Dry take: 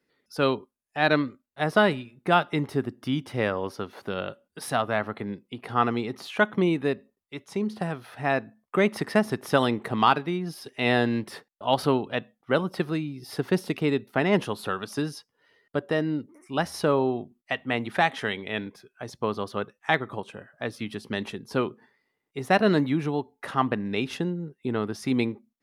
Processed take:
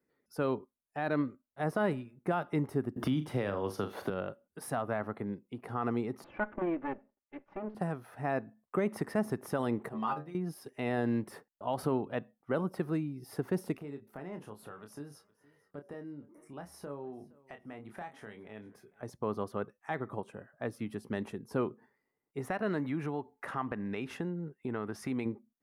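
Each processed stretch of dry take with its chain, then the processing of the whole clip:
2.96–4.1 bell 3500 Hz +9 dB 0.67 oct + flutter echo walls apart 6.8 m, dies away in 0.23 s + three-band squash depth 100%
6.24–7.75 minimum comb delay 3.4 ms + LPF 2600 Hz 24 dB/oct + low shelf 130 Hz -10.5 dB
9.89–10.35 notch 2200 Hz, Q 16 + metallic resonator 74 Hz, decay 0.3 s, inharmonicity 0.002
13.77–19.03 compressor 2:1, threshold -48 dBFS + doubler 28 ms -7 dB + feedback echo 0.466 s, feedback 31%, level -22.5 dB
22.4–25.26 bell 2000 Hz +8 dB 2.5 oct + compressor 2:1, threshold -30 dBFS
whole clip: limiter -15.5 dBFS; bell 3700 Hz -14 dB 1.6 oct; gain -4 dB

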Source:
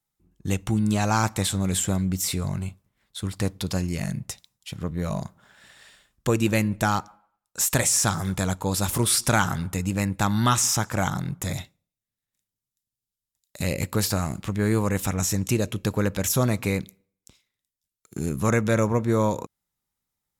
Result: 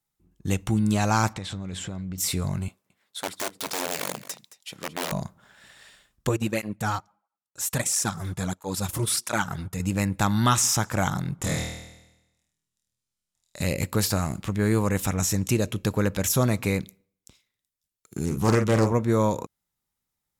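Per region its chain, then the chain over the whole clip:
1.33–2.18 LPF 4500 Hz + compressor 12:1, threshold -29 dBFS
2.68–5.12 wrapped overs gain 22 dB + HPF 320 Hz + echo 0.22 s -16 dB
6.29–9.8 transient shaper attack -5 dB, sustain -12 dB + tape flanging out of phase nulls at 1.5 Hz, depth 5.1 ms
11.36–13.62 LPF 9500 Hz + flutter echo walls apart 4.3 m, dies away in 0.95 s
18.25–18.92 notch 1600 Hz, Q 7.9 + doubler 45 ms -8.5 dB + Doppler distortion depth 0.4 ms
whole clip: dry

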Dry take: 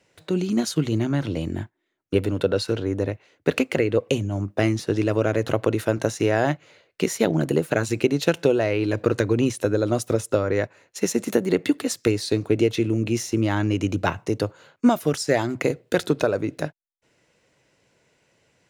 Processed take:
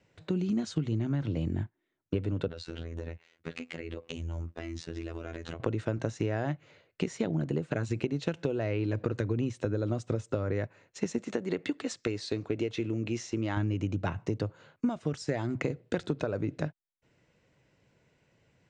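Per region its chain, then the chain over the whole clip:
2.48–5.6 tilt shelf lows -4.5 dB, about 1300 Hz + compressor 12:1, threshold -28 dBFS + robotiser 83.1 Hz
11.18–13.57 LPF 8700 Hz 24 dB/oct + bell 110 Hz -10 dB 2.8 oct
whole clip: steep low-pass 8500 Hz 72 dB/oct; tone controls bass +8 dB, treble -6 dB; compressor, threshold -21 dBFS; gain -5.5 dB

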